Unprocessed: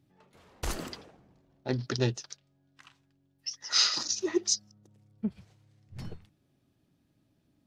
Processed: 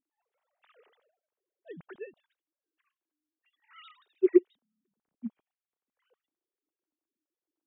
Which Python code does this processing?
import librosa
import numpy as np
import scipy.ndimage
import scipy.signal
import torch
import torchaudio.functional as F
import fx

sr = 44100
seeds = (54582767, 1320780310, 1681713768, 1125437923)

y = fx.sine_speech(x, sr)
y = fx.upward_expand(y, sr, threshold_db=-46.0, expansion=1.5)